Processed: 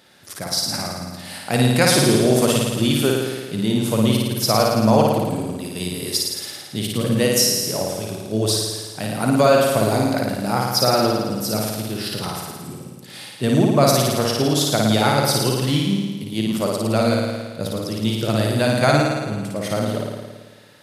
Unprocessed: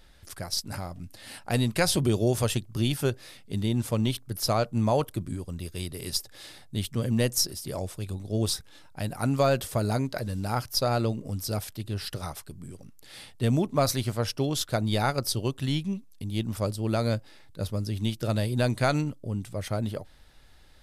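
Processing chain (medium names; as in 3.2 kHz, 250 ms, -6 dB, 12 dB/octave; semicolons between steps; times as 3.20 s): high-pass 130 Hz 24 dB/octave; on a send: flutter echo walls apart 9.5 m, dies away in 1.4 s; on the sum: trim +6.5 dB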